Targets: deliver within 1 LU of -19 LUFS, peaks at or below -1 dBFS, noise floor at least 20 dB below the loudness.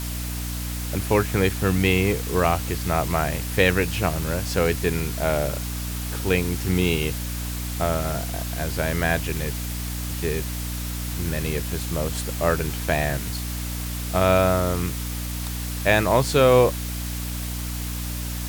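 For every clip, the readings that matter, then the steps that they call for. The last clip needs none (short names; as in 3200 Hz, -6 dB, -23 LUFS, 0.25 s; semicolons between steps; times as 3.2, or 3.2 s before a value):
hum 60 Hz; harmonics up to 300 Hz; hum level -27 dBFS; noise floor -29 dBFS; noise floor target -44 dBFS; loudness -24.0 LUFS; peak -5.0 dBFS; loudness target -19.0 LUFS
-> de-hum 60 Hz, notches 5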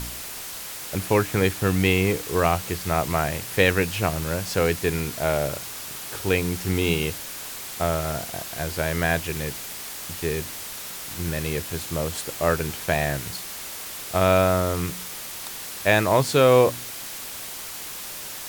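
hum none; noise floor -36 dBFS; noise floor target -45 dBFS
-> denoiser 9 dB, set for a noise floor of -36 dBFS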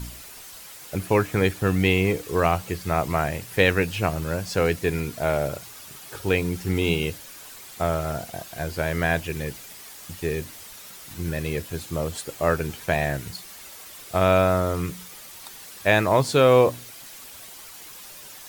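noise floor -43 dBFS; noise floor target -44 dBFS
-> denoiser 6 dB, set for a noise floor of -43 dBFS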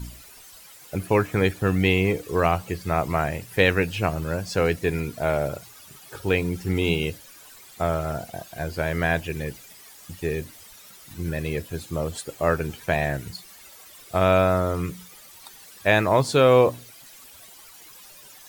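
noise floor -48 dBFS; loudness -24.0 LUFS; peak -5.0 dBFS; loudness target -19.0 LUFS
-> gain +5 dB; limiter -1 dBFS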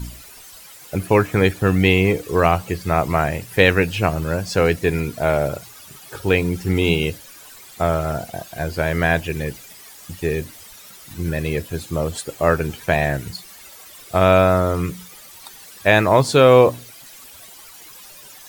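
loudness -19.0 LUFS; peak -1.0 dBFS; noise floor -43 dBFS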